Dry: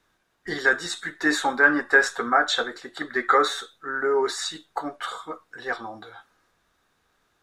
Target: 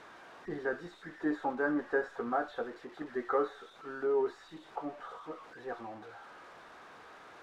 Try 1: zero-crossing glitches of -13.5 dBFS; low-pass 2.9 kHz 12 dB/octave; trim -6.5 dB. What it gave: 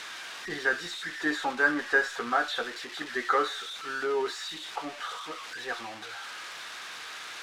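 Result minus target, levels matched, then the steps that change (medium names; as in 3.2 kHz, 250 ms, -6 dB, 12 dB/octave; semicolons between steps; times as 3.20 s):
4 kHz band +16.5 dB
change: low-pass 770 Hz 12 dB/octave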